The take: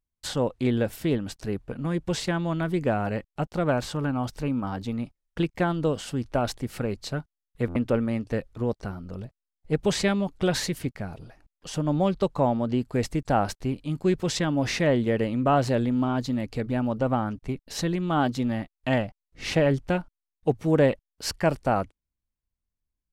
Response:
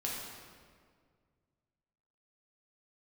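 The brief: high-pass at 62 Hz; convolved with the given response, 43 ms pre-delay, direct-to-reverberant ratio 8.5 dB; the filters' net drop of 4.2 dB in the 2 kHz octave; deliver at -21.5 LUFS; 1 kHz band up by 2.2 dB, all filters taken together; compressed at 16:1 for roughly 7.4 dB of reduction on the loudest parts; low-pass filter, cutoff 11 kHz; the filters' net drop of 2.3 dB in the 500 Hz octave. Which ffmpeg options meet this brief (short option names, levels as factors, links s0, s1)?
-filter_complex "[0:a]highpass=62,lowpass=11000,equalizer=f=500:t=o:g=-4.5,equalizer=f=1000:t=o:g=7,equalizer=f=2000:t=o:g=-8.5,acompressor=threshold=0.0631:ratio=16,asplit=2[s0][s1];[1:a]atrim=start_sample=2205,adelay=43[s2];[s1][s2]afir=irnorm=-1:irlink=0,volume=0.266[s3];[s0][s3]amix=inputs=2:normalize=0,volume=2.82"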